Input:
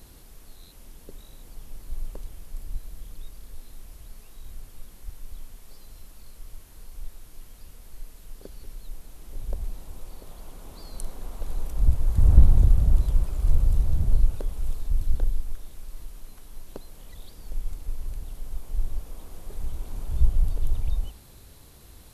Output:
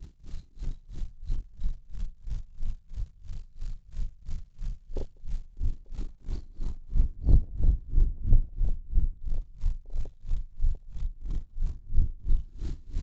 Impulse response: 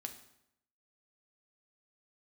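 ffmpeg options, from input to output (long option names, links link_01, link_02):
-filter_complex "[0:a]aeval=exprs='val(0)+0.5*0.0422*sgn(val(0))':channel_layout=same,afwtdn=0.0355,aresample=16000,asoftclip=type=tanh:threshold=-13.5dB,aresample=44100,atempo=1.7,asplit=2[link_01][link_02];[link_02]aecho=0:1:43|198|892:0.668|0.668|0.668[link_03];[link_01][link_03]amix=inputs=2:normalize=0,agate=range=-33dB:threshold=-31dB:ratio=3:detection=peak,aeval=exprs='val(0)*pow(10,-26*(0.5-0.5*cos(2*PI*3*n/s))/20)':channel_layout=same"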